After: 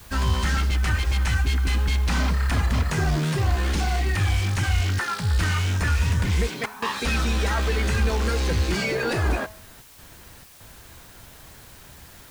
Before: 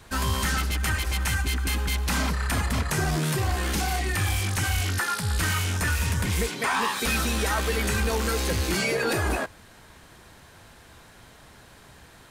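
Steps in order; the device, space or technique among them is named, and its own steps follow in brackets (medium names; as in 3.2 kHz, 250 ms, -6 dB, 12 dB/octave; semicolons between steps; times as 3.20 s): worn cassette (low-pass 6.3 kHz 12 dB/octave; wow and flutter; level dips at 6.66/9.82/10.44 s, 160 ms -16 dB; white noise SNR 23 dB); bass shelf 110 Hz +7.5 dB; de-hum 214 Hz, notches 29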